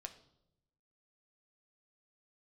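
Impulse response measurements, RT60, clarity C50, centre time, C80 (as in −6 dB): 0.80 s, 13.0 dB, 8 ms, 16.0 dB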